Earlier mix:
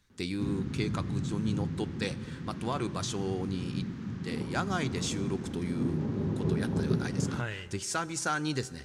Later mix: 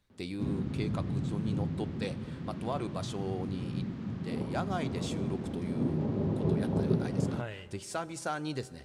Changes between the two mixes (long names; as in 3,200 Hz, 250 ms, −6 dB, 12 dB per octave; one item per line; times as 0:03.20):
speech −4.5 dB
master: add graphic EQ with 15 bands 630 Hz +8 dB, 1,600 Hz −4 dB, 6,300 Hz −7 dB